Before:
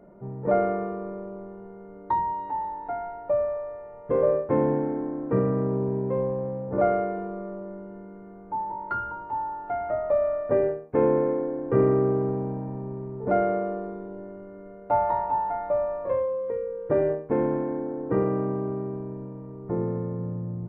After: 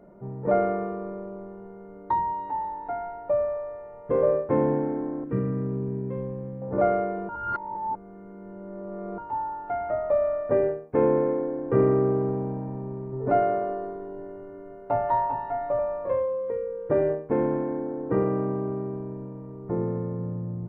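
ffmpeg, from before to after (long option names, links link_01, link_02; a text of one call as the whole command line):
ffmpeg -i in.wav -filter_complex "[0:a]asettb=1/sr,asplit=3[link_01][link_02][link_03];[link_01]atrim=end=5.244[link_04];[link_02]atrim=start=5.24:end=6.62,asetpts=PTS-STARTPTS,afade=type=in:duration=0.004:curve=qsin,afade=type=out:start_time=1.376:duration=0.004:curve=qsin,equalizer=frequency=760:width_type=o:width=1.6:gain=-13.5[link_05];[link_03]atrim=start=6.616[link_06];[link_04][link_05]acrossfade=duration=0.004:curve1=hsin:curve2=qsin[link_07];[link_07][link_06]acrossfade=duration=0.004:curve1=qsin:curve2=hsin,asettb=1/sr,asplit=3[link_08][link_09][link_10];[link_08]atrim=end=13.124[link_11];[link_09]atrim=start=13.12:end=15.79,asetpts=PTS-STARTPTS,afade=type=in:duration=0.004:curve=qsin,afade=type=out:start_time=2.666:duration=0.004:curve=qsin,aecho=1:1:7.4:0.78,atrim=end_sample=117747[link_12];[link_10]atrim=start=15.786[link_13];[link_11][link_12]acrossfade=duration=0.004:curve1=hsin:curve2=qsin[link_14];[link_14][link_13]acrossfade=duration=0.004:curve1=qsin:curve2=hsin,asplit=3[link_15][link_16][link_17];[link_15]atrim=end=7.292[link_18];[link_16]atrim=start=7.288:end=9.182,asetpts=PTS-STARTPTS,areverse[link_19];[link_17]atrim=start=9.178[link_20];[link_18][link_19]acrossfade=duration=0.004:curve1=hsin:curve2=hsin[link_21];[link_21][link_20]acrossfade=duration=0.004:curve1=hsin:curve2=hsin" out.wav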